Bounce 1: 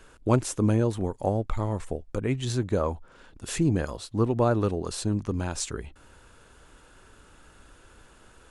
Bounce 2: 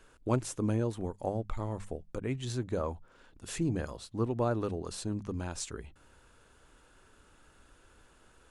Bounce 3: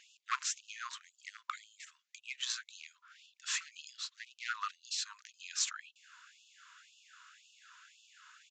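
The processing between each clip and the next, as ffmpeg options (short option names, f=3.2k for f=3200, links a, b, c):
-af "bandreject=f=50:t=h:w=6,bandreject=f=100:t=h:w=6,bandreject=f=150:t=h:w=6,bandreject=f=200:t=h:w=6,volume=-7dB"
-af "volume=25.5dB,asoftclip=hard,volume=-25.5dB,aresample=16000,aresample=44100,afftfilt=real='re*gte(b*sr/1024,930*pow(2600/930,0.5+0.5*sin(2*PI*1.9*pts/sr)))':imag='im*gte(b*sr/1024,930*pow(2600/930,0.5+0.5*sin(2*PI*1.9*pts/sr)))':win_size=1024:overlap=0.75,volume=8dB"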